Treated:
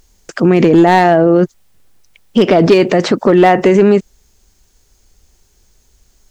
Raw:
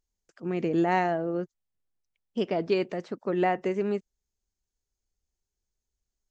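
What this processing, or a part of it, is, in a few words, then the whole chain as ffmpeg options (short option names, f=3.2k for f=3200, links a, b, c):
loud club master: -af "acompressor=threshold=-27dB:ratio=2,asoftclip=type=hard:threshold=-22.5dB,alimiter=level_in=33dB:limit=-1dB:release=50:level=0:latency=1,volume=-1dB"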